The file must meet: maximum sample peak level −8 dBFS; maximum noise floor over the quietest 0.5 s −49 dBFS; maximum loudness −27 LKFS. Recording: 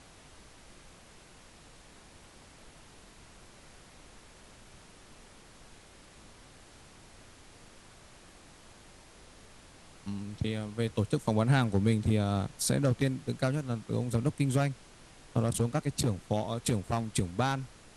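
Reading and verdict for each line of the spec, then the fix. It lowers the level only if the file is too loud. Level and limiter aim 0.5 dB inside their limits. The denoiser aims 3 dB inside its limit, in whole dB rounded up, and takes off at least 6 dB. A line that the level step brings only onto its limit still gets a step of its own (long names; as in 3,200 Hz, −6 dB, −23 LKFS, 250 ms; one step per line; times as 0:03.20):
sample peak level −14.0 dBFS: in spec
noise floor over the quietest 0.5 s −55 dBFS: in spec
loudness −31.0 LKFS: in spec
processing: no processing needed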